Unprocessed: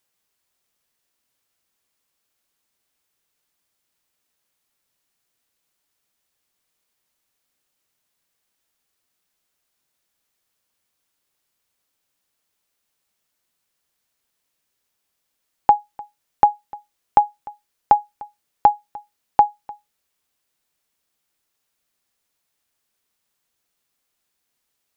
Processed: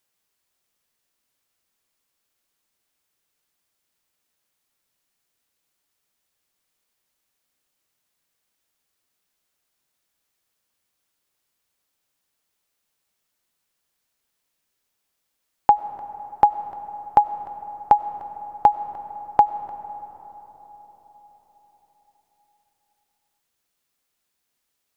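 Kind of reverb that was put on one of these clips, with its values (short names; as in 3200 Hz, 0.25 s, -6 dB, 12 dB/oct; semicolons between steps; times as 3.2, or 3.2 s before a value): digital reverb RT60 4.9 s, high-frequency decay 0.35×, pre-delay 55 ms, DRR 13.5 dB; gain -1 dB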